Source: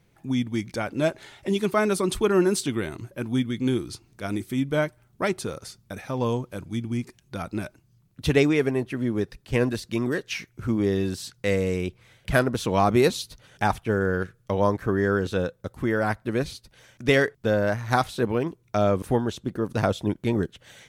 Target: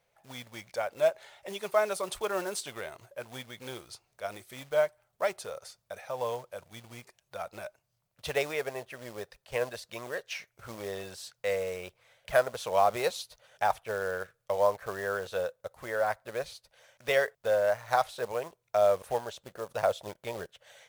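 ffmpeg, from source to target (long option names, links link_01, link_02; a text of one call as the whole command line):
ffmpeg -i in.wav -af "acrusher=bits=5:mode=log:mix=0:aa=0.000001,lowshelf=frequency=410:width_type=q:width=3:gain=-12,volume=-7dB" out.wav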